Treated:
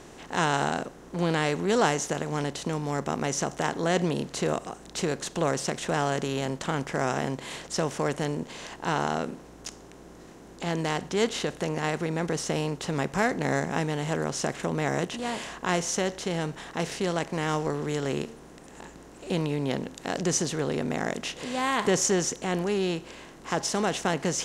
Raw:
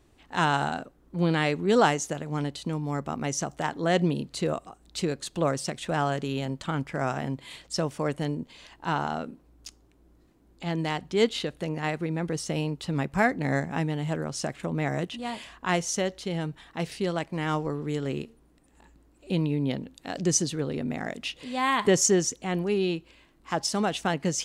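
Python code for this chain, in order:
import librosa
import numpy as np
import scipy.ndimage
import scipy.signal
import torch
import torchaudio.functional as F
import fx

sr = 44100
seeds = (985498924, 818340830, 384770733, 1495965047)

y = fx.bin_compress(x, sr, power=0.6)
y = y * 10.0 ** (-4.5 / 20.0)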